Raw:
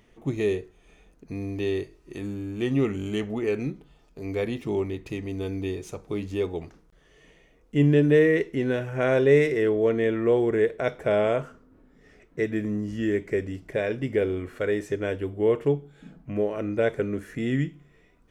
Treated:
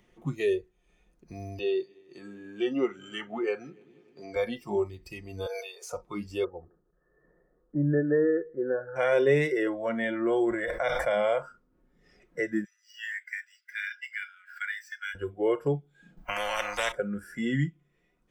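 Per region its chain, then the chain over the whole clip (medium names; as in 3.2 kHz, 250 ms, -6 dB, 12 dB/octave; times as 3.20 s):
1.59–4.36 s: high-pass 210 Hz + distance through air 50 m + multi-head delay 96 ms, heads second and third, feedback 46%, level -18.5 dB
5.46–5.92 s: steep high-pass 430 Hz 96 dB/octave + decay stretcher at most 26 dB/s
6.44–8.96 s: rippled Chebyshev low-pass 1.8 kHz, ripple 6 dB + feedback delay 161 ms, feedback 25%, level -22 dB
9.67–11.13 s: peaking EQ 440 Hz -13.5 dB 0.23 oct + decay stretcher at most 38 dB/s
12.64–15.15 s: median filter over 5 samples + steep high-pass 1.4 kHz 72 dB/octave
16.17–16.92 s: gate -43 dBFS, range -14 dB + spectrum-flattening compressor 4:1
whole clip: spectral noise reduction 17 dB; comb 5.6 ms, depth 40%; three bands compressed up and down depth 40%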